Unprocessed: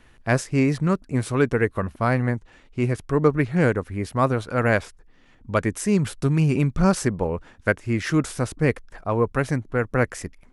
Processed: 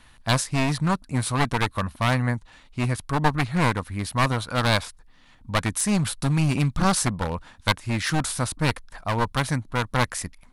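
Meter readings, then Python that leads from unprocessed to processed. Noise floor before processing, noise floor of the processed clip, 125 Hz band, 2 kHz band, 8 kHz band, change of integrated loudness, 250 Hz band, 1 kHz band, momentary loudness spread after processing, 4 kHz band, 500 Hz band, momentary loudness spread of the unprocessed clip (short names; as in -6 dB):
-54 dBFS, -54 dBFS, -1.0 dB, 0.0 dB, +6.5 dB, -1.5 dB, -3.5 dB, +2.5 dB, 6 LU, +10.5 dB, -7.5 dB, 7 LU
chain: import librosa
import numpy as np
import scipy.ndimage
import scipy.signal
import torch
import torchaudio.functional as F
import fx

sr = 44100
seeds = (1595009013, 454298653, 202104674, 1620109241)

y = np.minimum(x, 2.0 * 10.0 ** (-20.0 / 20.0) - x)
y = fx.graphic_eq_15(y, sr, hz=(400, 1000, 4000, 10000), db=(-10, 5, 8, 9))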